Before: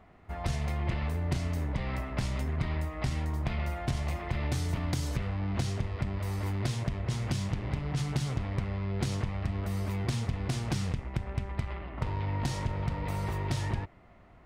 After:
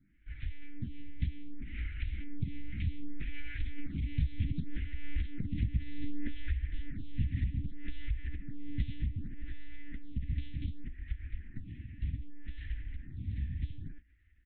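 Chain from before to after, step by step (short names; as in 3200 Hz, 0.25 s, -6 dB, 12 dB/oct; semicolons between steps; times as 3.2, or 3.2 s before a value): Doppler pass-by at 5.59, 25 m/s, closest 13 m; low shelf 82 Hz +2.5 dB; doubler 24 ms -12.5 dB; monotone LPC vocoder at 8 kHz 290 Hz; elliptic band-stop 280–1800 Hz, stop band 40 dB; bell 63 Hz +12 dB 1.3 oct; compressor 8:1, threshold -40 dBFS, peak gain reduction 20.5 dB; photocell phaser 0.65 Hz; gain +15 dB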